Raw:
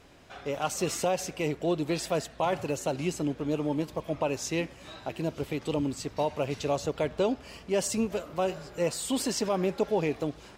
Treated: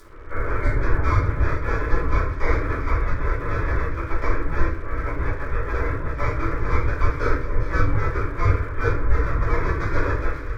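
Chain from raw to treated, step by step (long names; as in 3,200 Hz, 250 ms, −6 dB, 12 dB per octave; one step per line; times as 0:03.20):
each half-wave held at its own peak
camcorder AGC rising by 15 dB per second
first difference
voice inversion scrambler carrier 2,900 Hz
harmonic generator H 5 −14 dB, 7 −27 dB, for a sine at −27 dBFS
in parallel at +1 dB: brickwall limiter −39 dBFS, peak gain reduction 10.5 dB
on the sum: delay with a high-pass on its return 403 ms, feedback 32%, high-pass 1,800 Hz, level −10 dB
convolution reverb RT60 0.50 s, pre-delay 5 ms, DRR −10 dB
pitch-shifted copies added +5 semitones −18 dB
low-shelf EQ 290 Hz +12 dB
phaser with its sweep stopped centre 750 Hz, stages 6
dead-zone distortion −52 dBFS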